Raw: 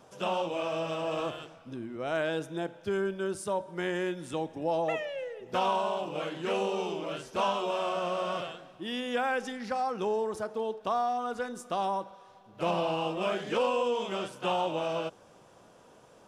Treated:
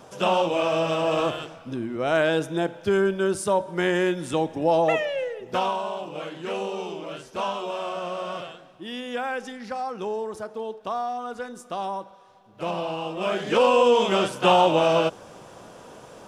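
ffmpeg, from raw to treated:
ffmpeg -i in.wav -af "volume=20.5dB,afade=type=out:start_time=5.21:duration=0.55:silence=0.375837,afade=type=in:start_time=13.1:duration=0.86:silence=0.266073" out.wav

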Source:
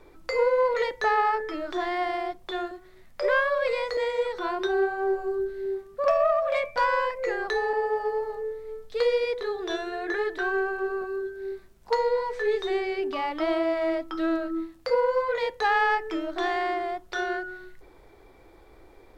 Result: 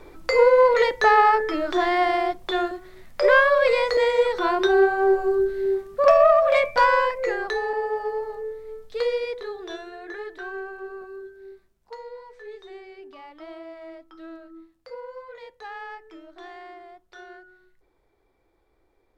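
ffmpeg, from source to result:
ffmpeg -i in.wav -af "volume=7dB,afade=type=out:start_time=6.67:duration=0.92:silence=0.446684,afade=type=out:start_time=8.87:duration=1.1:silence=0.421697,afade=type=out:start_time=11.24:duration=0.69:silence=0.421697" out.wav

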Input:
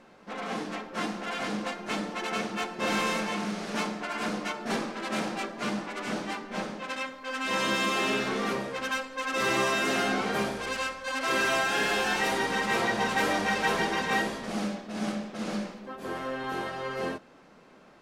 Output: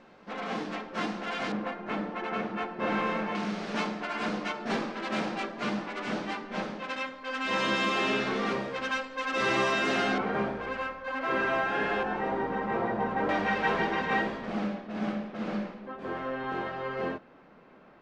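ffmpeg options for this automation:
ffmpeg -i in.wav -af "asetnsamples=nb_out_samples=441:pad=0,asendcmd='1.52 lowpass f 2000;3.35 lowpass f 4600;10.18 lowpass f 1800;12.03 lowpass f 1100;13.29 lowpass f 2600',lowpass=5000" out.wav

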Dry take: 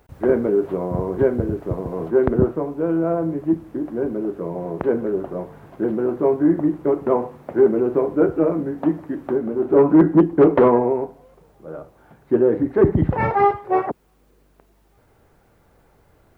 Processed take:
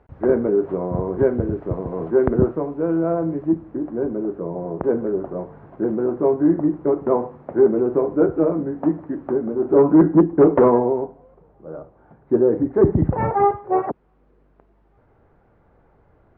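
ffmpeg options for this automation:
ffmpeg -i in.wav -af "asetnsamples=nb_out_samples=441:pad=0,asendcmd='1.23 lowpass f 2100;3.47 lowpass f 1500;4.39 lowpass f 1200;4.9 lowpass f 1500;10.82 lowpass f 1200;13.83 lowpass f 1600',lowpass=1700" out.wav

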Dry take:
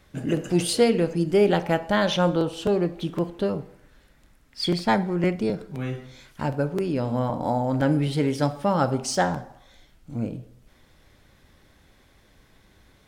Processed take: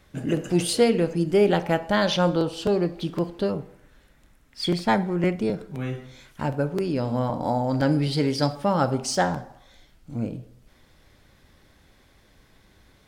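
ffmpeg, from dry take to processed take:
ffmpeg -i in.wav -af "asetnsamples=nb_out_samples=441:pad=0,asendcmd='1.94 equalizer g 7.5;3.51 equalizer g -3;6.74 equalizer g 6;7.69 equalizer g 14;8.55 equalizer g 2',equalizer=frequency=4700:width_type=o:width=0.29:gain=-0.5" out.wav

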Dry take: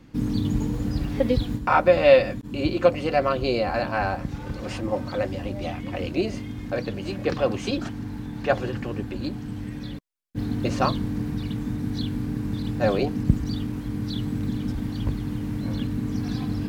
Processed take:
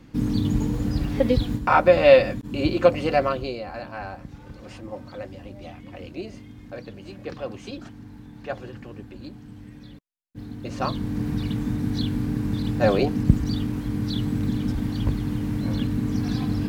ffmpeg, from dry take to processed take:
ffmpeg -i in.wav -af "volume=13.5dB,afade=type=out:start_time=3.15:duration=0.41:silence=0.281838,afade=type=in:start_time=10.64:duration=0.7:silence=0.251189" out.wav

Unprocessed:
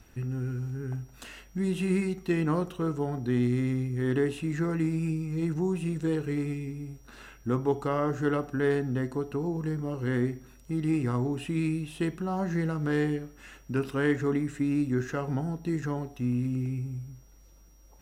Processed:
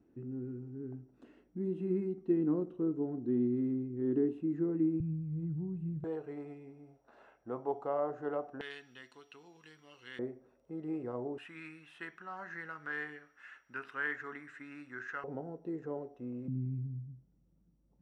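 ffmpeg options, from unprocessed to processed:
ffmpeg -i in.wav -af "asetnsamples=nb_out_samples=441:pad=0,asendcmd='5 bandpass f 120;6.04 bandpass f 670;8.61 bandpass f 3100;10.19 bandpass f 550;11.38 bandpass f 1600;15.24 bandpass f 500;16.48 bandpass f 170',bandpass=frequency=310:width_type=q:width=2.6:csg=0" out.wav

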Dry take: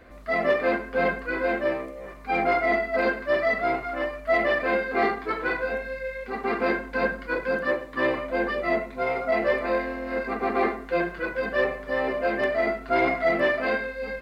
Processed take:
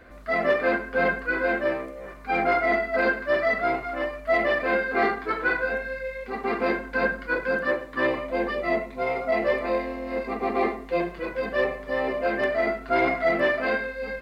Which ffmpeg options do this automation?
ffmpeg -i in.wav -af "asetnsamples=nb_out_samples=441:pad=0,asendcmd='3.7 equalizer g -1;4.7 equalizer g 5.5;6.01 equalizer g -3;6.84 equalizer g 4;8.07 equalizer g -7.5;9.69 equalizer g -14;11.26 equalizer g -6.5;12.26 equalizer g 1.5',equalizer=frequency=1500:width_type=o:width=0.24:gain=5.5" out.wav

